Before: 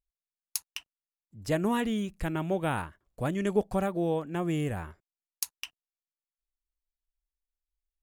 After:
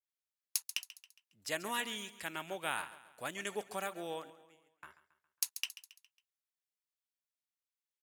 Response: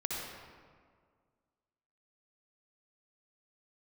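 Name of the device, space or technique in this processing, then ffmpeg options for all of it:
filter by subtraction: -filter_complex "[0:a]asettb=1/sr,asplit=3[link_01][link_02][link_03];[link_01]atrim=end=4.304[link_04];[link_02]atrim=start=4.3:end=4.83,asetpts=PTS-STARTPTS,afade=type=in:duration=0.004:curve=qsin,afade=type=out:start_time=0.526:duration=0.004:curve=qsin,agate=range=-48dB:threshold=-24dB:ratio=16:detection=peak[link_05];[link_03]atrim=start=4.826[link_06];[link_04][link_05]acrossfade=duration=0.004:curve1=hsin:curve2=qsin[link_07];[link_07][link_06]acrossfade=duration=0.004:curve1=qsin:curve2=hsin,highpass=77,aecho=1:1:137|274|411|548:0.158|0.0745|0.035|0.0165,asplit=2[link_08][link_09];[link_09]lowpass=2100,volume=-1[link_10];[link_08][link_10]amix=inputs=2:normalize=0,adynamicequalizer=threshold=0.00355:dfrequency=3100:dqfactor=0.7:tfrequency=3100:tqfactor=0.7:attack=5:release=100:ratio=0.375:range=3:mode=boostabove:tftype=highshelf,volume=-3dB"

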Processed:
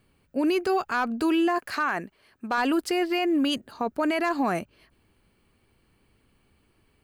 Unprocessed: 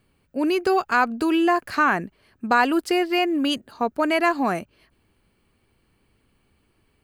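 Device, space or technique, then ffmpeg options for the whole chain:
clipper into limiter: -filter_complex "[0:a]asettb=1/sr,asplit=3[link_01][link_02][link_03];[link_01]atrim=end=1.584[link_04];[link_02]atrim=start=1.58:end=2.58,asetpts=PTS-STARTPTS,afade=type=in:duration=0.004:curve=qsin,afade=type=out:start_time=0.996:duration=0.004:curve=qsin,lowshelf=frequency=270:gain=-10.5[link_05];[link_03]atrim=start=2.576[link_06];[link_04][link_05]acrossfade=duration=0.004:curve1=hsin:curve2=qsin[link_07];[link_07][link_06]acrossfade=duration=0.004:curve1=qsin:curve2=hsin,asoftclip=type=hard:threshold=-10.5dB,alimiter=limit=-17dB:level=0:latency=1:release=18"

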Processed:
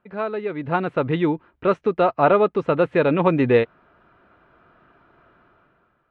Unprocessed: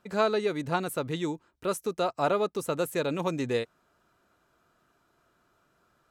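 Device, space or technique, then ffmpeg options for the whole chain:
action camera in a waterproof case: -af "lowpass=frequency=2700:width=0.5412,lowpass=frequency=2700:width=1.3066,dynaudnorm=framelen=160:gausssize=9:maxgain=15dB,volume=-1.5dB" -ar 48000 -c:a aac -b:a 64k

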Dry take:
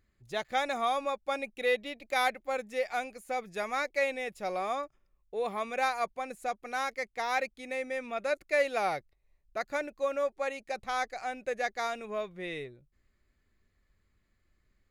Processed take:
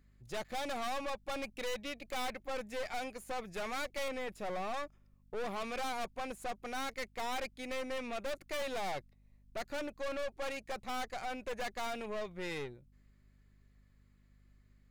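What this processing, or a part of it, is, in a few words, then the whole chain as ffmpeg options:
valve amplifier with mains hum: -filter_complex "[0:a]aeval=exprs='(tanh(100*val(0)+0.65)-tanh(0.65))/100':channel_layout=same,aeval=exprs='val(0)+0.000398*(sin(2*PI*50*n/s)+sin(2*PI*2*50*n/s)/2+sin(2*PI*3*50*n/s)/3+sin(2*PI*4*50*n/s)/4+sin(2*PI*5*50*n/s)/5)':channel_layout=same,asettb=1/sr,asplit=3[link_01][link_02][link_03];[link_01]atrim=end=4.084[link_04];[link_02]atrim=start=4.08:end=4.74,asetpts=PTS-STARTPTS,afade=type=in:duration=0.004:curve=qsin,afade=type=out:start_time=0.656:duration=0.004:curve=qsin,acrossover=split=2600[link_05][link_06];[link_06]acompressor=threshold=-56dB:ratio=4:attack=1:release=60[link_07];[link_05][link_07]amix=inputs=2:normalize=0[link_08];[link_03]atrim=start=4.736[link_09];[link_04][link_08]acrossfade=duration=0.004:curve1=hsin:curve2=qsin[link_10];[link_10][link_09]acrossfade=duration=0.004:curve1=qsin:curve2=hsin,volume=4dB"

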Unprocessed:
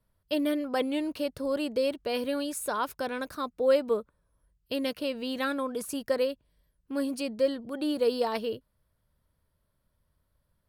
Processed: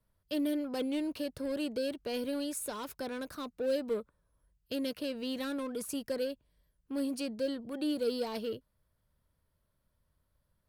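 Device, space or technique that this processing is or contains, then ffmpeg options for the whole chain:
one-band saturation: -filter_complex "[0:a]acrossover=split=470|3100[link_01][link_02][link_03];[link_02]asoftclip=type=tanh:threshold=-39.5dB[link_04];[link_01][link_04][link_03]amix=inputs=3:normalize=0,volume=-2.5dB"

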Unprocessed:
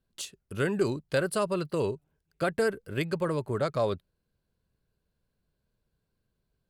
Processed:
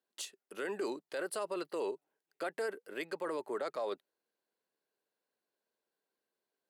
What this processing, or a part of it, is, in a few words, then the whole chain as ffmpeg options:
laptop speaker: -af "highpass=frequency=310:width=0.5412,highpass=frequency=310:width=1.3066,equalizer=frequency=820:width_type=o:width=0.4:gain=5,equalizer=frequency=1900:width_type=o:width=0.21:gain=5,alimiter=limit=-24dB:level=0:latency=1:release=17,volume=-4.5dB"

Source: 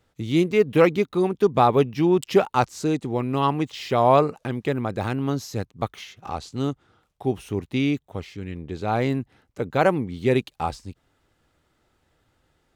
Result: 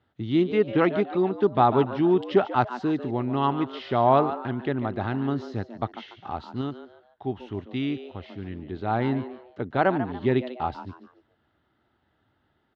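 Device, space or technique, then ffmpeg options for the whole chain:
frequency-shifting delay pedal into a guitar cabinet: -filter_complex "[0:a]asplit=4[link_01][link_02][link_03][link_04];[link_02]adelay=144,afreqshift=120,volume=-12.5dB[link_05];[link_03]adelay=288,afreqshift=240,volume=-21.9dB[link_06];[link_04]adelay=432,afreqshift=360,volume=-31.2dB[link_07];[link_01][link_05][link_06][link_07]amix=inputs=4:normalize=0,highpass=89,equalizer=frequency=160:width_type=q:width=4:gain=-6,equalizer=frequency=500:width_type=q:width=4:gain=-9,equalizer=frequency=1100:width_type=q:width=4:gain=-3,equalizer=frequency=2400:width_type=q:width=4:gain=-10,lowpass=frequency=3400:width=0.5412,lowpass=frequency=3400:width=1.3066,asettb=1/sr,asplit=3[link_08][link_09][link_10];[link_08]atrim=end=6.614[link_11];[link_09]atrim=start=6.61:end=8.24,asetpts=PTS-STARTPTS,afade=type=in:duration=0.004:curve=qsin,afade=type=out:start_time=1.626:duration=0.004:curve=qsin,equalizer=frequency=260:width=0.35:gain=-4.5[link_12];[link_10]atrim=start=8.236[link_13];[link_11][link_12]acrossfade=duration=0.004:curve1=hsin:curve2=qsin[link_14];[link_14][link_13]acrossfade=duration=0.004:curve1=qsin:curve2=hsin"

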